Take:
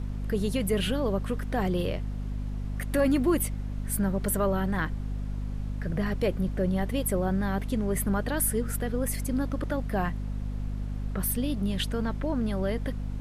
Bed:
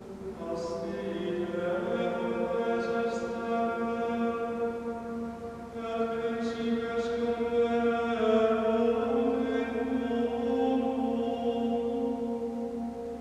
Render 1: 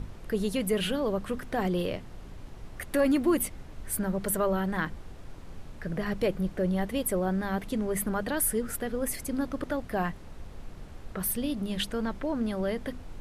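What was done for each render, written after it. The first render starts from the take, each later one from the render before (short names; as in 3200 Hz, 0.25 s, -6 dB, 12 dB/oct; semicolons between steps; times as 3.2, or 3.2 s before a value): notches 50/100/150/200/250 Hz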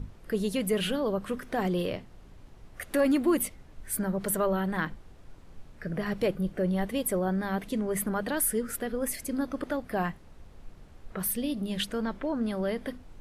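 noise print and reduce 7 dB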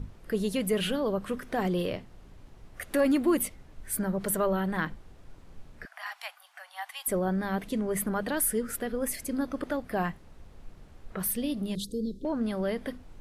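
5.85–7.08 steep high-pass 730 Hz 72 dB/oct; 11.75–12.25 Chebyshev band-stop 460–3800 Hz, order 4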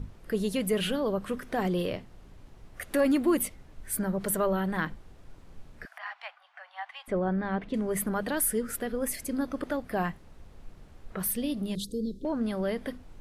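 5.98–7.74 LPF 2700 Hz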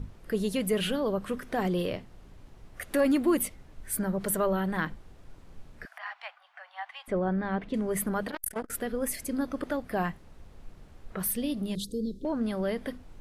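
8.27–8.7 core saturation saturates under 1200 Hz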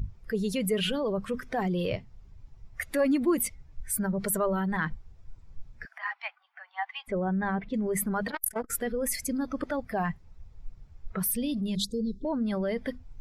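per-bin expansion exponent 1.5; in parallel at +0.5 dB: negative-ratio compressor -38 dBFS, ratio -1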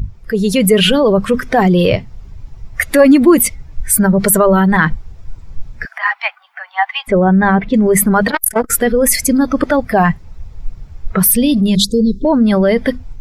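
AGC gain up to 6 dB; maximiser +12 dB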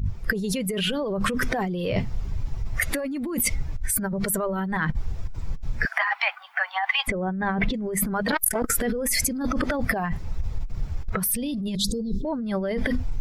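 limiter -13 dBFS, peak gain reduction 12 dB; negative-ratio compressor -25 dBFS, ratio -1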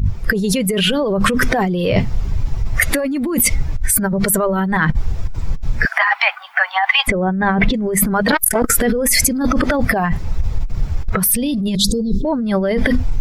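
gain +9.5 dB; limiter -2 dBFS, peak gain reduction 3 dB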